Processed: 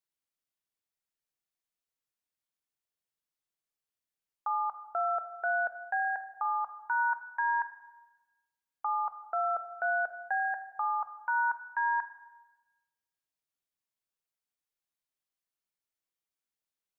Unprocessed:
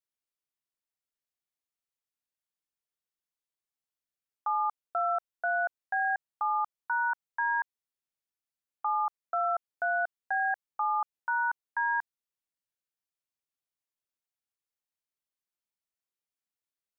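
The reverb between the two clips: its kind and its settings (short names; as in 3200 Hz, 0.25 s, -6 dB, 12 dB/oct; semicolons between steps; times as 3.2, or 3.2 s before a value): shoebox room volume 840 m³, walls mixed, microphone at 0.59 m; gain -1 dB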